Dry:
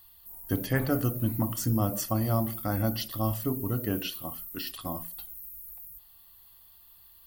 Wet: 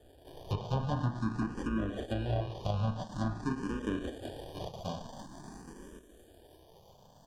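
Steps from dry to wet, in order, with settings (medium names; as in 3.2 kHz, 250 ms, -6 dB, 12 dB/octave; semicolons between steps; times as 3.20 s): harmony voices -12 st -10 dB; treble shelf 12 kHz -4 dB; in parallel at 0 dB: compression, threshold -35 dBFS, peak gain reduction 13.5 dB; on the sum: sample-and-hold 33×; Butterworth band-stop 2.1 kHz, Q 2.7; on a send: feedback echo behind a high-pass 658 ms, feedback 71%, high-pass 5.4 kHz, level -17 dB; on the sum: low-pass that closes with the level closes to 1.9 kHz, closed at -19 dBFS; barber-pole phaser +0.48 Hz; trim -4.5 dB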